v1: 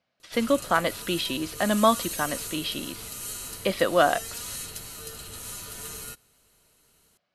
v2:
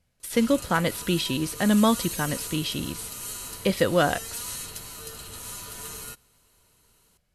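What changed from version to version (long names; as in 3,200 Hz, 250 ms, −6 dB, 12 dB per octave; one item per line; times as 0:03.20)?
speech: remove loudspeaker in its box 270–5,000 Hz, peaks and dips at 450 Hz −4 dB, 660 Hz +6 dB, 1,100 Hz +8 dB
master: add parametric band 1,000 Hz +5.5 dB 0.27 octaves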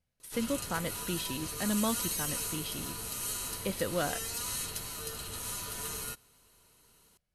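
speech −11.0 dB
master: add notch filter 7,400 Hz, Q 18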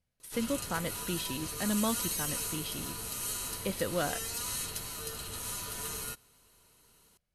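nothing changed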